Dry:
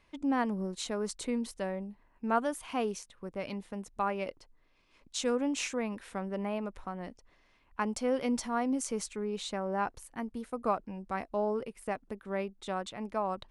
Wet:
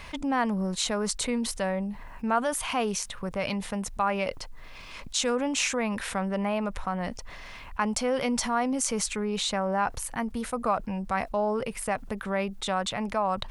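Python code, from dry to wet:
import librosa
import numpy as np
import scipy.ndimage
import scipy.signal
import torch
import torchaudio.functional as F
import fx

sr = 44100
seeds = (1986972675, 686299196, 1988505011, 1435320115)

y = fx.peak_eq(x, sr, hz=330.0, db=-10.5, octaves=0.95)
y = fx.env_flatten(y, sr, amount_pct=50)
y = F.gain(torch.from_numpy(y), 4.0).numpy()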